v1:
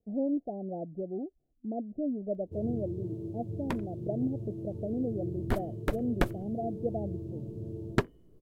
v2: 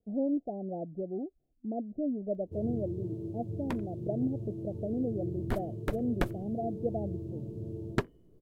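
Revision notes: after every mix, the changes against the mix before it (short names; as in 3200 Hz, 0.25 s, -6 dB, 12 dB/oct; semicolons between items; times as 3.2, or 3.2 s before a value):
second sound -3.0 dB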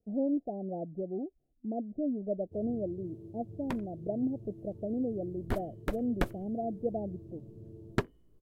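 first sound -9.5 dB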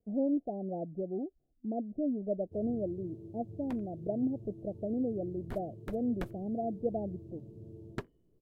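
second sound -9.5 dB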